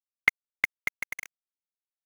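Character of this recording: tremolo saw down 8.4 Hz, depth 65%; a quantiser's noise floor 6-bit, dither none; Vorbis

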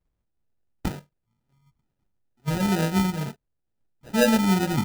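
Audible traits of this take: phasing stages 12, 2.2 Hz, lowest notch 450–1300 Hz; aliases and images of a low sample rate 1100 Hz, jitter 0%

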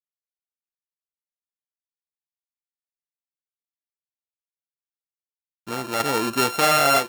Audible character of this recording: a buzz of ramps at a fixed pitch in blocks of 32 samples; tremolo saw down 0.5 Hz, depth 50%; a quantiser's noise floor 10-bit, dither none

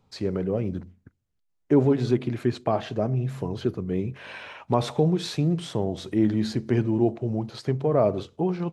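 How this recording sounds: noise floor -73 dBFS; spectral tilt -7.5 dB/oct

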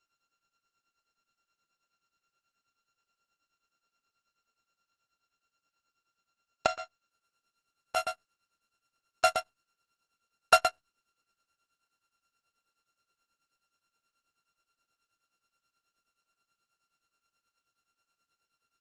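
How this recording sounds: a buzz of ramps at a fixed pitch in blocks of 32 samples; tremolo triangle 9.4 Hz, depth 95%; Opus

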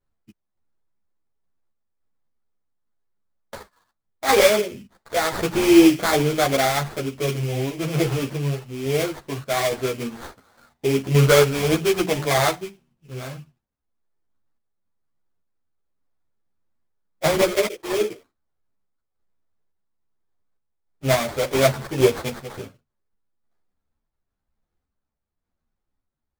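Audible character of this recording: random-step tremolo; aliases and images of a low sample rate 2800 Hz, jitter 20%; a shimmering, thickened sound

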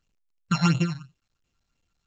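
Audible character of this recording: a buzz of ramps at a fixed pitch in blocks of 32 samples; phasing stages 8, 2.9 Hz, lowest notch 350–1700 Hz; µ-law

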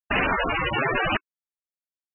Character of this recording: a quantiser's noise floor 12-bit, dither none; random-step tremolo 3.9 Hz, depth 80%; aliases and images of a low sample rate 9400 Hz, jitter 0%; MP3

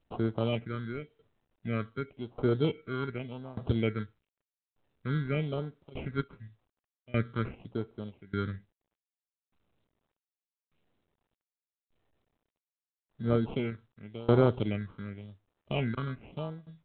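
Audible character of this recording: aliases and images of a low sample rate 1800 Hz, jitter 0%; phasing stages 6, 0.92 Hz, lowest notch 690–2600 Hz; tremolo saw down 0.84 Hz, depth 95%; µ-law

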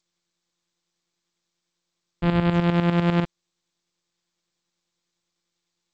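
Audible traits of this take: a buzz of ramps at a fixed pitch in blocks of 256 samples; tremolo saw up 10 Hz, depth 70%; G.722

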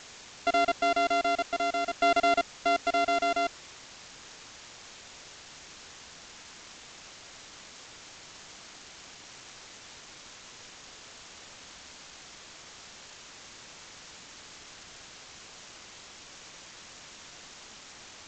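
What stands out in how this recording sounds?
a buzz of ramps at a fixed pitch in blocks of 64 samples; tremolo saw down 0.51 Hz, depth 60%; a quantiser's noise floor 8-bit, dither triangular; G.722

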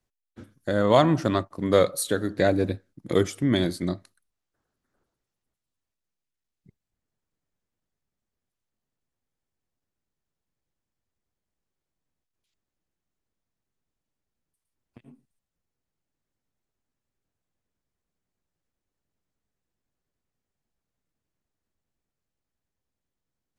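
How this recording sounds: noise floor -86 dBFS; spectral tilt -5.5 dB/oct

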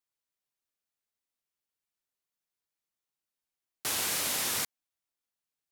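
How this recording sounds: noise floor -91 dBFS; spectral tilt -0.5 dB/oct

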